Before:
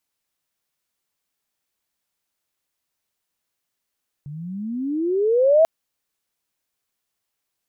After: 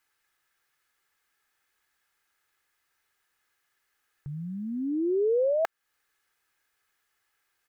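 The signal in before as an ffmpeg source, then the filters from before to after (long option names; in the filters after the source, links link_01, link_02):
-f lavfi -i "aevalsrc='pow(10,(-10+21.5*(t/1.39-1))/20)*sin(2*PI*140*1.39/(27*log(2)/12)*(exp(27*log(2)/12*t/1.39)-1))':duration=1.39:sample_rate=44100"
-af "equalizer=frequency=1600:width=1.3:gain=14,aecho=1:1:2.4:0.44,acompressor=threshold=-31dB:ratio=2"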